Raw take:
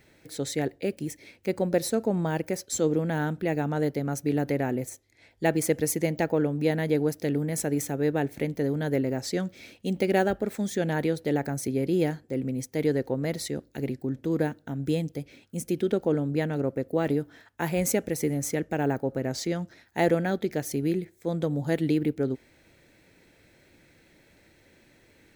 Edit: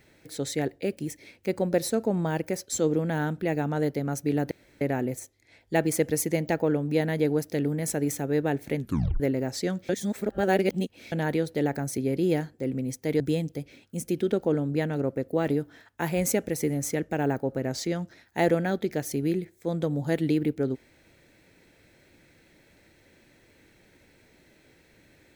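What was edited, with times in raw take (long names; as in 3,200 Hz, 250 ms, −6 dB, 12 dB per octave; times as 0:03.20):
0:04.51: splice in room tone 0.30 s
0:08.46: tape stop 0.44 s
0:09.59–0:10.82: reverse
0:12.90–0:14.80: remove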